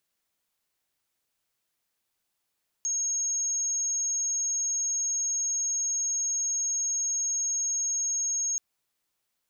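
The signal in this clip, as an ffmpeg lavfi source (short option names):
-f lavfi -i "sine=f=6530:d=5.73:r=44100,volume=-7.44dB"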